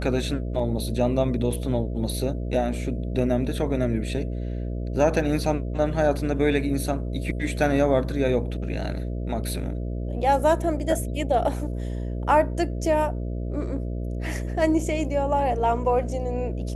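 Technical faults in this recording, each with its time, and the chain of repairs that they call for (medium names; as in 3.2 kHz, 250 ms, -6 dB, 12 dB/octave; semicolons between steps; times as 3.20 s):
buzz 60 Hz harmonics 11 -29 dBFS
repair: de-hum 60 Hz, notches 11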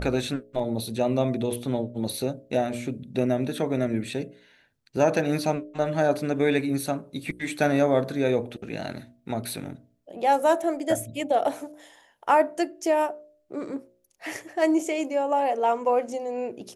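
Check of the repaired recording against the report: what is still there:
nothing left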